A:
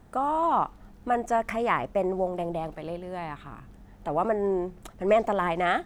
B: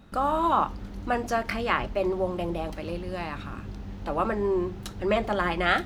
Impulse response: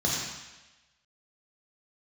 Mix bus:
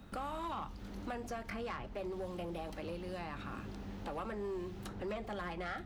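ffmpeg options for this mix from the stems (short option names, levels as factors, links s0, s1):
-filter_complex "[0:a]aemphasis=mode=production:type=50kf,volume=0.141[s0];[1:a]volume=0.794[s1];[s0][s1]amix=inputs=2:normalize=0,acrossover=split=180|2300[s2][s3][s4];[s2]acompressor=threshold=0.00447:ratio=4[s5];[s3]acompressor=threshold=0.0112:ratio=4[s6];[s4]acompressor=threshold=0.002:ratio=4[s7];[s5][s6][s7]amix=inputs=3:normalize=0,asoftclip=type=tanh:threshold=0.0224"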